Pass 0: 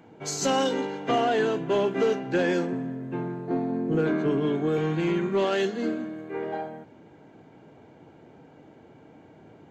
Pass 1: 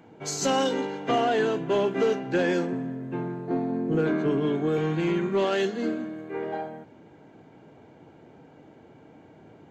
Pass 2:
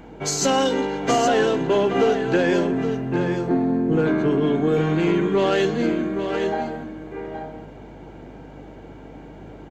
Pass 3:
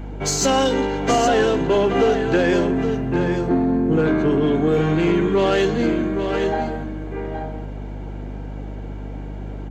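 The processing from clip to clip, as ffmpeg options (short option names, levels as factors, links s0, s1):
-af anull
-af "acompressor=threshold=0.0224:ratio=1.5,aeval=exprs='val(0)+0.00141*(sin(2*PI*50*n/s)+sin(2*PI*2*50*n/s)/2+sin(2*PI*3*50*n/s)/3+sin(2*PI*4*50*n/s)/4+sin(2*PI*5*50*n/s)/5)':c=same,aecho=1:1:820:0.398,volume=2.82"
-filter_complex "[0:a]aeval=exprs='val(0)+0.0178*(sin(2*PI*50*n/s)+sin(2*PI*2*50*n/s)/2+sin(2*PI*3*50*n/s)/3+sin(2*PI*4*50*n/s)/4+sin(2*PI*5*50*n/s)/5)':c=same,asplit=2[s0][s1];[s1]asoftclip=type=tanh:threshold=0.075,volume=0.447[s2];[s0][s2]amix=inputs=2:normalize=0"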